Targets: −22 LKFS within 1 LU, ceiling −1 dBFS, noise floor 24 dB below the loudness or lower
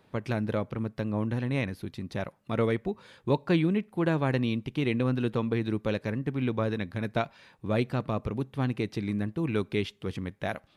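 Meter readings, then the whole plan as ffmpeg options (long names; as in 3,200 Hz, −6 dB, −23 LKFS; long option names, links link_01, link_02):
integrated loudness −30.5 LKFS; sample peak −14.0 dBFS; target loudness −22.0 LKFS
→ -af "volume=8.5dB"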